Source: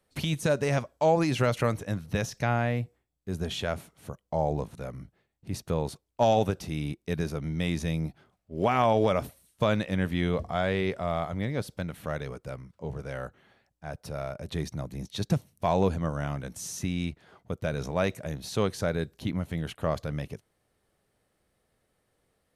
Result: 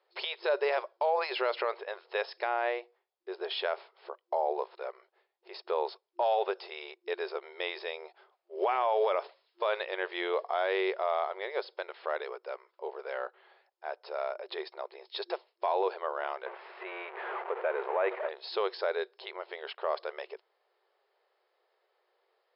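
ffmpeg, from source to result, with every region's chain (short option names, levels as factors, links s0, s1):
-filter_complex "[0:a]asettb=1/sr,asplit=3[s0][s1][s2];[s0]atrim=end=16.464[s3];[s1]atrim=start=16.46:end=18.29,asetpts=PTS-STARTPTS,afade=t=in:d=0.004:c=qsin,afade=t=out:st=1.826:d=0.004:c=qsin,aeval=exprs='val(0)+0.5*0.0251*sgn(val(0))':c=same,lowpass=f=2300:w=0.5412,lowpass=f=2300:w=1.3066[s4];[s2]atrim=start=18.286[s5];[s3][s4]acrossfade=d=0.004:c1=hsin:c2=qsin[s6];[s6][s5]acrossfade=d=0.004:c1=qsin:c2=hsin,afftfilt=real='re*between(b*sr/4096,350,5300)':imag='im*between(b*sr/4096,350,5300)':win_size=4096:overlap=0.75,equalizer=f=930:t=o:w=0.7:g=6,alimiter=limit=0.112:level=0:latency=1:release=29"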